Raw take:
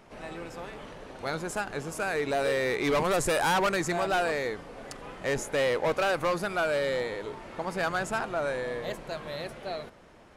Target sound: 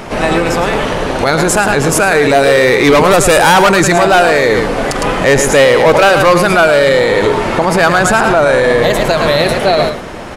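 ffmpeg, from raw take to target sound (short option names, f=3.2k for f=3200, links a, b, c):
-af "aecho=1:1:108:0.355,alimiter=level_in=29dB:limit=-1dB:release=50:level=0:latency=1,volume=-1dB"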